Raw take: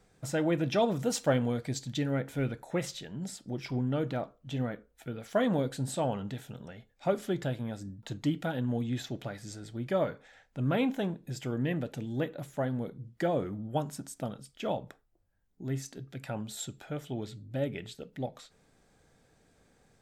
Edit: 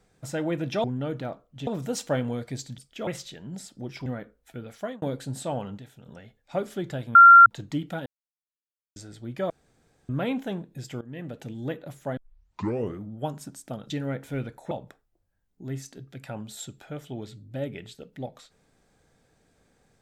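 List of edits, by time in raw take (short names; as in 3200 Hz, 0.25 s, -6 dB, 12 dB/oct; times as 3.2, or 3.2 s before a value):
1.95–2.76 swap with 14.42–14.71
3.75–4.58 move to 0.84
5.23–5.54 fade out
6.3–6.58 gain -6.5 dB
7.67–7.98 bleep 1380 Hz -7 dBFS
8.58–9.48 mute
10.02–10.61 room tone
11.53–11.97 fade in, from -18.5 dB
12.69 tape start 0.81 s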